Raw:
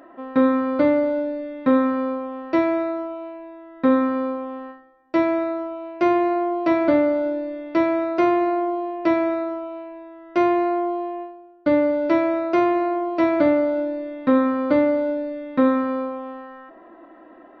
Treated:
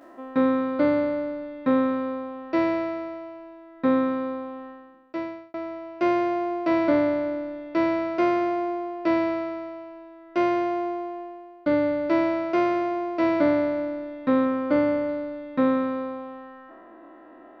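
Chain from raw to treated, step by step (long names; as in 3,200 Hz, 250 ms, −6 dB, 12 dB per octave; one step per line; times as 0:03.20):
peak hold with a decay on every bin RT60 1.76 s
0:04.67–0:05.54: fade out
0:14.45–0:15.09: notch filter 3,900 Hz, Q 6.4
level −4.5 dB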